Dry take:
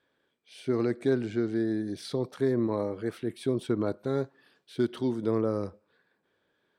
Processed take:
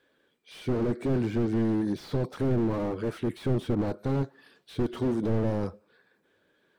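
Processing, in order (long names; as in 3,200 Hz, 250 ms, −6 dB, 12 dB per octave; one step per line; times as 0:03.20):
spectral magnitudes quantised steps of 15 dB
slew-rate limiting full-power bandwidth 10 Hz
level +6 dB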